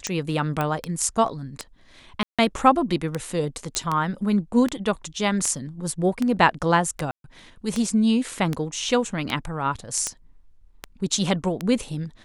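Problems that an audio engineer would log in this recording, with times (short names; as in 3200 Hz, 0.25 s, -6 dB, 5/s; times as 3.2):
tick 78 rpm -11 dBFS
0.61 pop -12 dBFS
2.23–2.39 gap 0.156 s
3.75 pop -9 dBFS
7.11–7.24 gap 0.132 s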